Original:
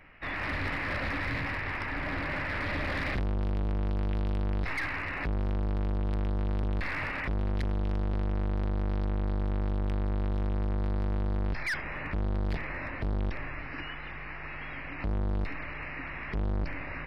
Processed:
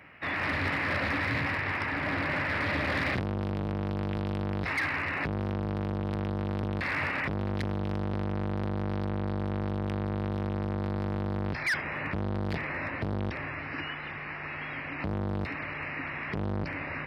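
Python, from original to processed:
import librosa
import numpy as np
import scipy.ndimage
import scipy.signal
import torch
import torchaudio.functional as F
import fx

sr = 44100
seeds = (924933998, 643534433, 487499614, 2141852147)

y = scipy.signal.sosfilt(scipy.signal.butter(4, 81.0, 'highpass', fs=sr, output='sos'), x)
y = F.gain(torch.from_numpy(y), 3.5).numpy()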